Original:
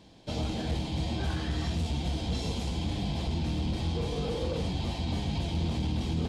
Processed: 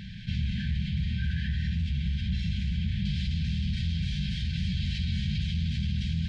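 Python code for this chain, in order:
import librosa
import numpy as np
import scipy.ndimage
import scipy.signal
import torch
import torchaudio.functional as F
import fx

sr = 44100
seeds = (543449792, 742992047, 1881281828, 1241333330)

y = fx.lowpass(x, sr, hz=fx.steps((0.0, 2500.0), (3.05, 4600.0)), slope=12)
y = fx.rider(y, sr, range_db=3, speed_s=0.5)
y = fx.brickwall_bandstop(y, sr, low_hz=220.0, high_hz=1500.0)
y = fx.env_flatten(y, sr, amount_pct=50)
y = F.gain(torch.from_numpy(y), 1.0).numpy()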